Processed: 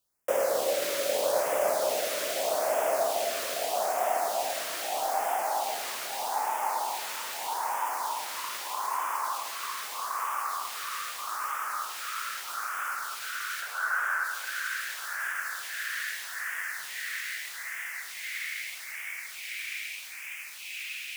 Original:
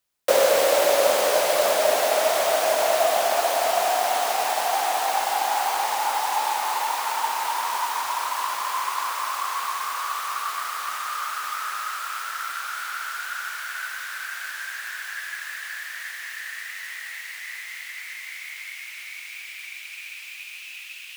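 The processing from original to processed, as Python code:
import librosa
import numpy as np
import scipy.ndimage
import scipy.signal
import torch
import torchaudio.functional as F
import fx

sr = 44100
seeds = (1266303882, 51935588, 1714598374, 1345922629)

p1 = fx.band_shelf(x, sr, hz=830.0, db=14.5, octaves=2.4, at=(13.62, 14.24))
p2 = fx.over_compress(p1, sr, threshold_db=-34.0, ratio=-1.0)
p3 = p1 + F.gain(torch.from_numpy(p2), -2.5).numpy()
p4 = fx.echo_alternate(p3, sr, ms=271, hz=1800.0, feedback_pct=85, wet_db=-5)
p5 = fx.filter_lfo_notch(p4, sr, shape='sine', hz=0.8, low_hz=760.0, high_hz=4200.0, q=0.78)
p6 = fx.echo_crushed(p5, sr, ms=107, feedback_pct=55, bits=7, wet_db=-11.0)
y = F.gain(torch.from_numpy(p6), -8.5).numpy()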